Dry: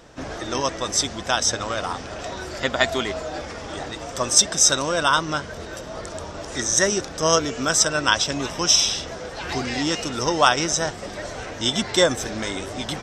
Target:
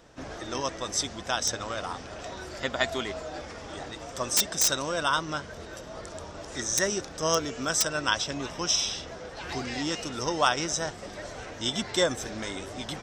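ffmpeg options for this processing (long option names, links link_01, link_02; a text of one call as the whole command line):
ffmpeg -i in.wav -filter_complex "[0:a]asettb=1/sr,asplit=3[link_01][link_02][link_03];[link_01]atrim=end=8.214[link_04];[link_02]atrim=start=8.21:end=9.37,asetpts=PTS-STARTPTS,afade=type=in:duration=0.004:curve=qsin,afade=type=out:start_time=1.156:duration=0.004:curve=qsin,highshelf=frequency=8500:gain=-7.5[link_05];[link_03]atrim=start=9.366[link_06];[link_04][link_05]acrossfade=duration=0.004:curve1=hsin:curve2=qsin[link_07];[link_07][link_06]acrossfade=duration=0.004:curve1=qsin:curve2=hsin,acrossover=split=3900[link_08][link_09];[link_09]aeval=exprs='(mod(2.51*val(0)+1,2)-1)/2.51':channel_layout=same[link_10];[link_08][link_10]amix=inputs=2:normalize=0,volume=-7dB" out.wav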